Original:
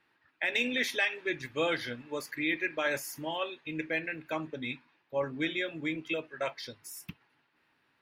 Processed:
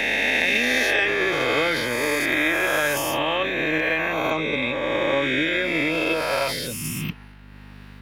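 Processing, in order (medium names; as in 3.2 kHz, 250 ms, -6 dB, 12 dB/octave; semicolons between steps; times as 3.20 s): reverse spectral sustain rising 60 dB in 2.90 s; in parallel at 0 dB: peak limiter -21.5 dBFS, peak gain reduction 11 dB; on the sum: hum 50 Hz, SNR 25 dB; transient shaper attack +9 dB, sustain +5 dB; three bands compressed up and down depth 40%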